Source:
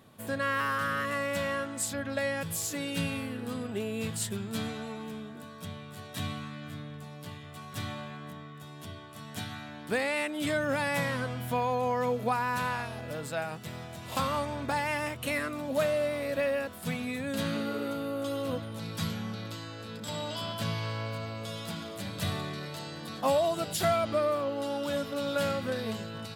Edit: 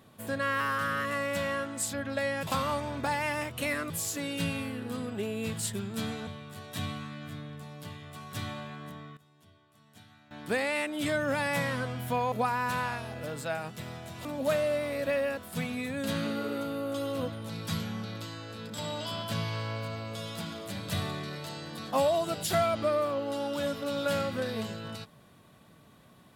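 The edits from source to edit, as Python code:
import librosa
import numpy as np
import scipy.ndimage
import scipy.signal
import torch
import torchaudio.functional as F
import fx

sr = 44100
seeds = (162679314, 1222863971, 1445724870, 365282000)

y = fx.edit(x, sr, fx.cut(start_s=4.84, length_s=0.84),
    fx.fade_down_up(start_s=8.46, length_s=1.38, db=-17.0, fade_s=0.12, curve='log'),
    fx.cut(start_s=11.73, length_s=0.46),
    fx.move(start_s=14.12, length_s=1.43, to_s=2.47), tone=tone)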